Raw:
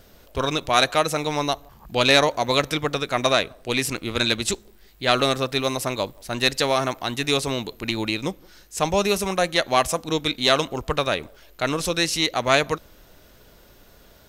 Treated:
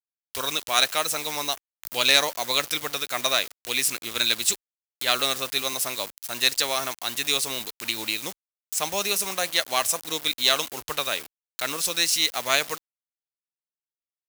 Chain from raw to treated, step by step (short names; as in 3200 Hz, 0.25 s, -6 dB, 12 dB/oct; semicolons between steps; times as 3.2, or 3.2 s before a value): bit-crush 6-bit; tilt +3.5 dB/oct; mismatched tape noise reduction encoder only; gain -6 dB